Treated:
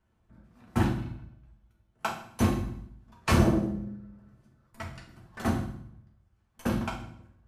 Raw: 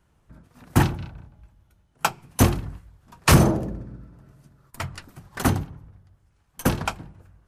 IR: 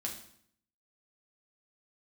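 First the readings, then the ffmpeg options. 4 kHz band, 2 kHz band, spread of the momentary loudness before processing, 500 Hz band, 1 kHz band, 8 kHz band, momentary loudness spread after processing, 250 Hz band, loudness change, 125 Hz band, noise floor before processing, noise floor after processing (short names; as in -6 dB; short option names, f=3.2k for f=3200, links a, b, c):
-9.5 dB, -7.5 dB, 22 LU, -5.5 dB, -7.0 dB, -13.5 dB, 21 LU, -3.5 dB, -6.5 dB, -7.0 dB, -65 dBFS, -71 dBFS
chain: -filter_complex "[0:a]lowpass=f=3.7k:p=1[a];[1:a]atrim=start_sample=2205[b];[a][b]afir=irnorm=-1:irlink=0,volume=-7dB"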